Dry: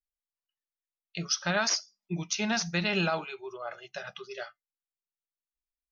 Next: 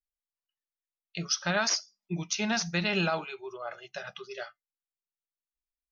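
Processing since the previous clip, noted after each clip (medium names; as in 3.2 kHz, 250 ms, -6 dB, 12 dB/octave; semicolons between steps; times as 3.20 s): no audible change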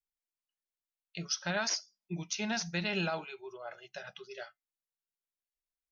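band-stop 1.2 kHz, Q 8.6; trim -5 dB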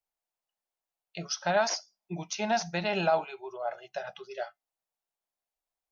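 peaking EQ 730 Hz +13.5 dB 1.1 oct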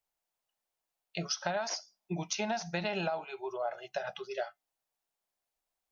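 compression 10:1, threshold -33 dBFS, peak gain reduction 13.5 dB; trim +3 dB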